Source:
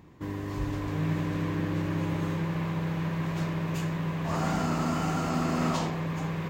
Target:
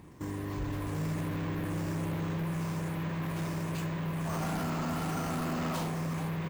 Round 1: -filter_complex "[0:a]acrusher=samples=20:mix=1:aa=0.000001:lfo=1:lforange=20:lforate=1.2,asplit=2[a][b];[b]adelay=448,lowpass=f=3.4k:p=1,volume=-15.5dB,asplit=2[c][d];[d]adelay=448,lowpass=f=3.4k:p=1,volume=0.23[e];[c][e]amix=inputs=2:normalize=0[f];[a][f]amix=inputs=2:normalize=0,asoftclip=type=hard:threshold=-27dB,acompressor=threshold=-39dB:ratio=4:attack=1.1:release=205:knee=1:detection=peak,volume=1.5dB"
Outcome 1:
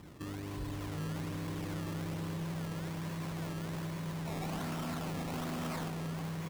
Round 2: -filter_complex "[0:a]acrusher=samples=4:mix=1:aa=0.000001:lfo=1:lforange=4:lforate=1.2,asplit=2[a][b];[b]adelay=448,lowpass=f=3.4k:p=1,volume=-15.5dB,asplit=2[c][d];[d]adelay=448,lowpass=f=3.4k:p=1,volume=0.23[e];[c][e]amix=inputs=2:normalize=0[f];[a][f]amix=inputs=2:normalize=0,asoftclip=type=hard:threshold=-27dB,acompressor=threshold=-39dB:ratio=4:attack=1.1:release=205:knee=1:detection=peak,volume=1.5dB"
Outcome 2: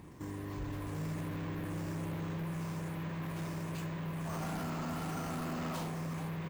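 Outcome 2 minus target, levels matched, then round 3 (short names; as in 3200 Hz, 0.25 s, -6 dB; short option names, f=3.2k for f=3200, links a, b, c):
compressor: peak gain reduction +5 dB
-filter_complex "[0:a]acrusher=samples=4:mix=1:aa=0.000001:lfo=1:lforange=4:lforate=1.2,asplit=2[a][b];[b]adelay=448,lowpass=f=3.4k:p=1,volume=-15.5dB,asplit=2[c][d];[d]adelay=448,lowpass=f=3.4k:p=1,volume=0.23[e];[c][e]amix=inputs=2:normalize=0[f];[a][f]amix=inputs=2:normalize=0,asoftclip=type=hard:threshold=-27dB,acompressor=threshold=-32.5dB:ratio=4:attack=1.1:release=205:knee=1:detection=peak,volume=1.5dB"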